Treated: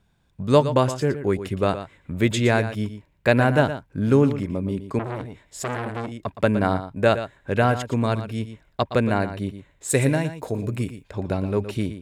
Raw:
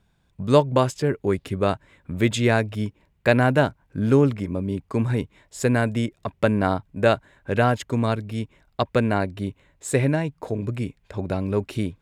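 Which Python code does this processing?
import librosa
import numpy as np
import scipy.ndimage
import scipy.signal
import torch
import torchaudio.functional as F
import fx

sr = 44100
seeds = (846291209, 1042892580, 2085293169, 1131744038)

y = fx.high_shelf(x, sr, hz=fx.line((9.89, 4800.0), (11.02, 8200.0)), db=12.0, at=(9.89, 11.02), fade=0.02)
y = y + 10.0 ** (-11.5 / 20.0) * np.pad(y, (int(117 * sr / 1000.0), 0))[:len(y)]
y = fx.transformer_sat(y, sr, knee_hz=1600.0, at=(4.99, 6.12))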